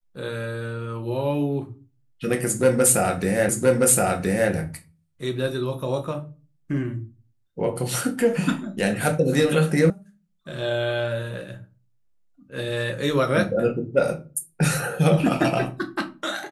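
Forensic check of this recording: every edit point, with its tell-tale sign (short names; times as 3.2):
3.49 repeat of the last 1.02 s
9.9 sound cut off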